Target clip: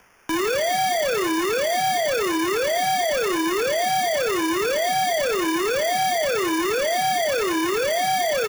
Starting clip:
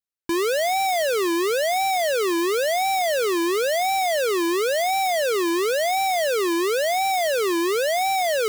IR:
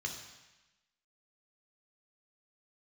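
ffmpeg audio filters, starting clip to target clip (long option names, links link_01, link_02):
-filter_complex "[0:a]lowpass=frequency=3000:width=0.5412,lowpass=frequency=3000:width=1.3066,equalizer=frequency=140:width=0.5:gain=-11.5,acompressor=mode=upward:threshold=-31dB:ratio=2.5,acrusher=samples=11:mix=1:aa=0.000001,afreqshift=-17,volume=26dB,asoftclip=hard,volume=-26dB,asplit=2[link_01][link_02];[link_02]adelay=37,volume=-12dB[link_03];[link_01][link_03]amix=inputs=2:normalize=0,asplit=2[link_04][link_05];[1:a]atrim=start_sample=2205,adelay=126[link_06];[link_05][link_06]afir=irnorm=-1:irlink=0,volume=-18.5dB[link_07];[link_04][link_07]amix=inputs=2:normalize=0,volume=5.5dB"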